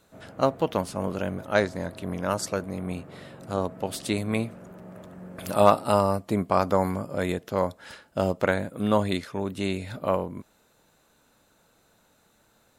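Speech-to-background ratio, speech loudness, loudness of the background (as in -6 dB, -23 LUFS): 18.5 dB, -27.0 LUFS, -45.5 LUFS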